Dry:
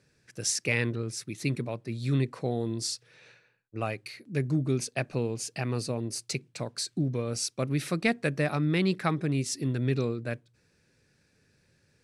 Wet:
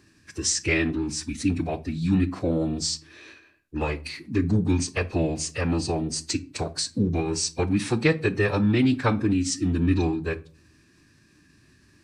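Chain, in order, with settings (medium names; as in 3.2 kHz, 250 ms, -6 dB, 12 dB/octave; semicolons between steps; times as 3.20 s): in parallel at +1 dB: compression, threshold -39 dBFS, peak gain reduction 17.5 dB; on the sum: formant-preserving pitch shift -6.5 st; simulated room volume 230 m³, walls furnished, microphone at 0.45 m; trim +3.5 dB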